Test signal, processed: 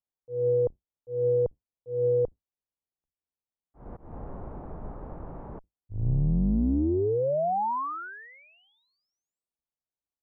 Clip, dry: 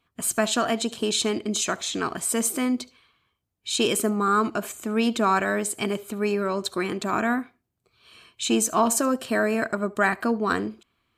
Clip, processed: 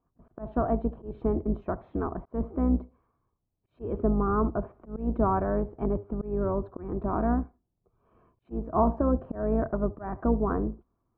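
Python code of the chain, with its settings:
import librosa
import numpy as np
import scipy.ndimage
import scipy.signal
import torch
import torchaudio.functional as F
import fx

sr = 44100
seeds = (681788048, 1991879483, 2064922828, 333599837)

y = fx.octave_divider(x, sr, octaves=2, level_db=-1.0)
y = fx.auto_swell(y, sr, attack_ms=202.0)
y = scipy.signal.sosfilt(scipy.signal.butter(4, 1000.0, 'lowpass', fs=sr, output='sos'), y)
y = y * librosa.db_to_amplitude(-1.5)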